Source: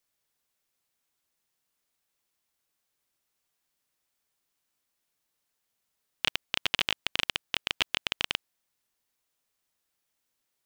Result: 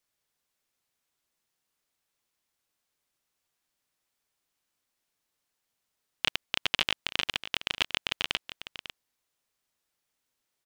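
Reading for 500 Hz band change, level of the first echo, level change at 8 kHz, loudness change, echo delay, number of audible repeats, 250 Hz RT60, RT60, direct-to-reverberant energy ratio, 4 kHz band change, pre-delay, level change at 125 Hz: 0.0 dB, -12.5 dB, -1.0 dB, 0.0 dB, 548 ms, 1, no reverb, no reverb, no reverb, 0.0 dB, no reverb, 0.0 dB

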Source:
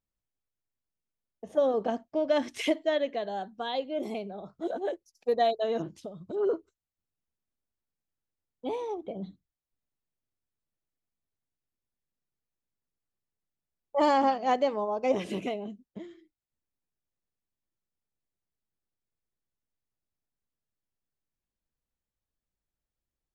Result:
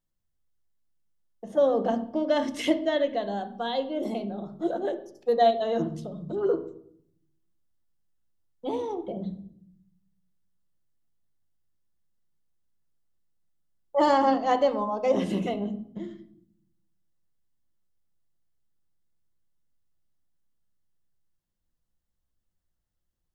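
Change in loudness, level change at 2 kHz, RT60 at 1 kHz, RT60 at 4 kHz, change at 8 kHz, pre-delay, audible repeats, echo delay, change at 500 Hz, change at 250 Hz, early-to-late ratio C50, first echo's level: +3.0 dB, +1.5 dB, 0.60 s, 0.50 s, no reading, 5 ms, no echo, no echo, +3.0 dB, +5.0 dB, 13.5 dB, no echo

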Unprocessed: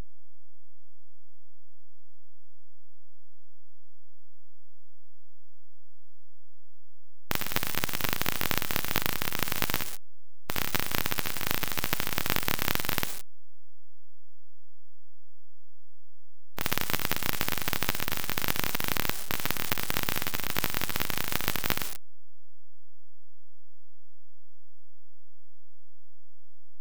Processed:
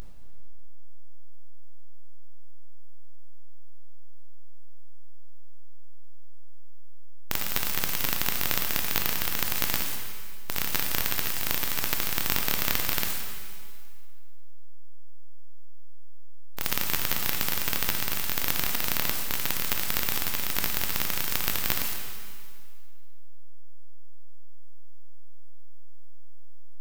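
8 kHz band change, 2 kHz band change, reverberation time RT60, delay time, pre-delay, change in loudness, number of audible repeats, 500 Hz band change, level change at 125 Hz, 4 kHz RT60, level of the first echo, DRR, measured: +4.0 dB, 0.0 dB, 2.1 s, no echo, 7 ms, +3.0 dB, no echo, -1.5 dB, -1.5 dB, 1.9 s, no echo, 3.0 dB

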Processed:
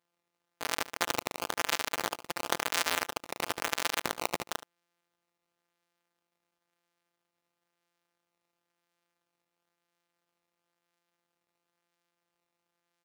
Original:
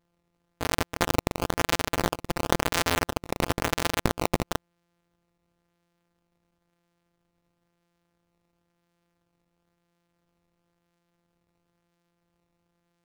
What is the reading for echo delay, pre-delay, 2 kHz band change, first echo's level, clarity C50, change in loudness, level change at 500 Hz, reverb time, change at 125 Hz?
73 ms, no reverb, -3.0 dB, -16.5 dB, no reverb, -4.5 dB, -8.5 dB, no reverb, -20.0 dB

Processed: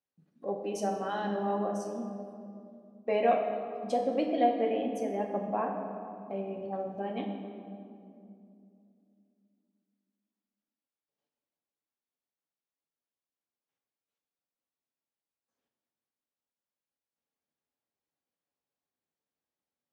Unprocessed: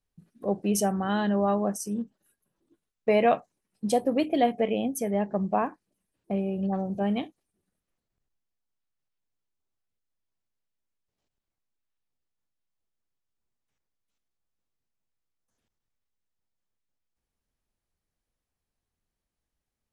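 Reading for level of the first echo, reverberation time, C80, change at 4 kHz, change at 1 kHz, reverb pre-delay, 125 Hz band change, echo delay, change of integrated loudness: no echo, 2.6 s, 5.5 dB, -7.5 dB, -2.0 dB, 4 ms, -10.0 dB, no echo, -5.0 dB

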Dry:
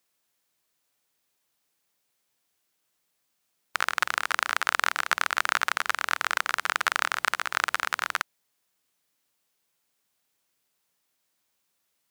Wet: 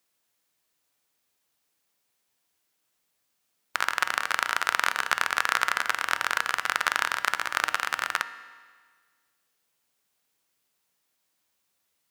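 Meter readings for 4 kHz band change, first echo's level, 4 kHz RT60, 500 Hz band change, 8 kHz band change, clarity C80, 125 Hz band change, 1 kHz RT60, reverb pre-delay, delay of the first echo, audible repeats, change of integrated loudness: 0.0 dB, no echo, 1.5 s, 0.0 dB, 0.0 dB, 14.5 dB, no reading, 1.6 s, 4 ms, no echo, no echo, +0.5 dB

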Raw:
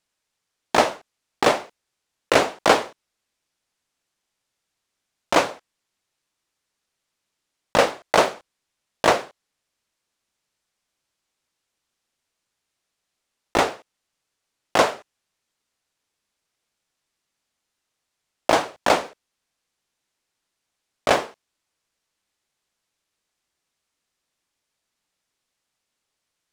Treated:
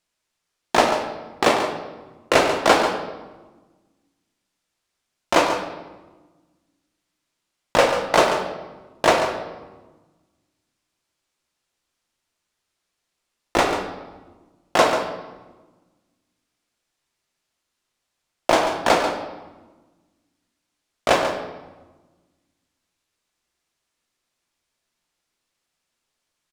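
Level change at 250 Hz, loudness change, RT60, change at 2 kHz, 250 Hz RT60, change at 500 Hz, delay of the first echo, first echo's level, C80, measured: +2.5 dB, +1.0 dB, 1.3 s, +1.5 dB, 1.8 s, +2.0 dB, 140 ms, -9.5 dB, 6.5 dB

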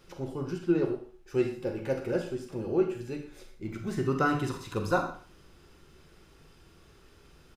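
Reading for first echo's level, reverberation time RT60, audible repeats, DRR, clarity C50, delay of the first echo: -16.0 dB, 0.40 s, 1, 4.5 dB, 7.5 dB, 122 ms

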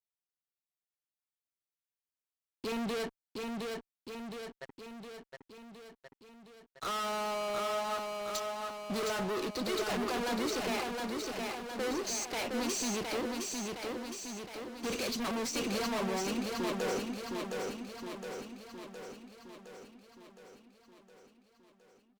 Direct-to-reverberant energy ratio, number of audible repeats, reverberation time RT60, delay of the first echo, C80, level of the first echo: no reverb, 8, no reverb, 714 ms, no reverb, -3.5 dB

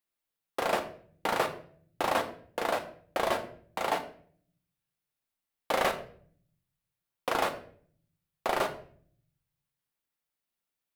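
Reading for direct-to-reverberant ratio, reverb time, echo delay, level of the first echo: 6.0 dB, 0.50 s, no echo, no echo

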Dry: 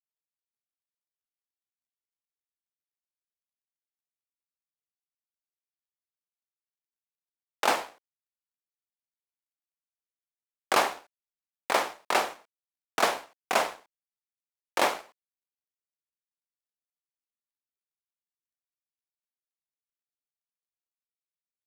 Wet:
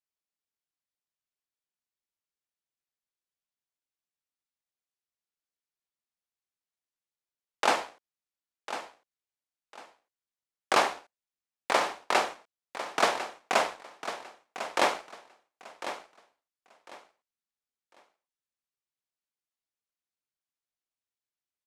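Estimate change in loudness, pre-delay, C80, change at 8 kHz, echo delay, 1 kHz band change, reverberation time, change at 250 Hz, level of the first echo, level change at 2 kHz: -1.5 dB, no reverb, no reverb, -1.5 dB, 1050 ms, +0.5 dB, no reverb, +0.5 dB, -11.5 dB, +0.5 dB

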